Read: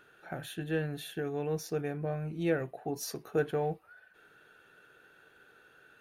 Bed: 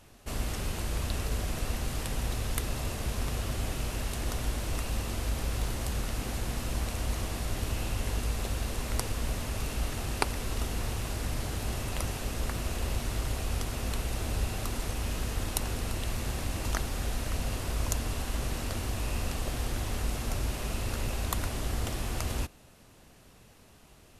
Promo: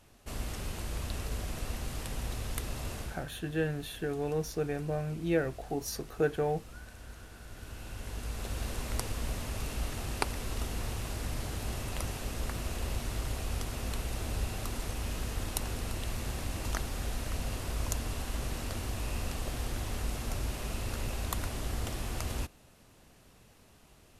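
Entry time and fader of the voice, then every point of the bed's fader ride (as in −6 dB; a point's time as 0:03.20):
2.85 s, +1.0 dB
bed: 0:03.00 −4.5 dB
0:03.27 −16.5 dB
0:07.37 −16.5 dB
0:08.64 −3 dB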